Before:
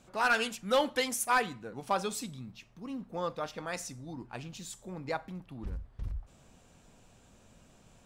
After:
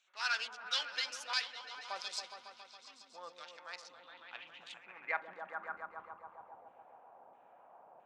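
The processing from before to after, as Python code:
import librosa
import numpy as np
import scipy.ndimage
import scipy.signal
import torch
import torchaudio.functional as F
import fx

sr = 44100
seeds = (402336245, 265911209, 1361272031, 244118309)

y = fx.wiener(x, sr, points=9)
y = fx.filter_lfo_bandpass(y, sr, shape='saw_down', hz=1.5, low_hz=560.0, high_hz=3200.0, q=0.81)
y = fx.echo_opening(y, sr, ms=138, hz=400, octaves=1, feedback_pct=70, wet_db=-3)
y = fx.filter_sweep_bandpass(y, sr, from_hz=5100.0, to_hz=810.0, start_s=3.7, end_s=6.64, q=3.3)
y = F.gain(torch.from_numpy(y), 14.0).numpy()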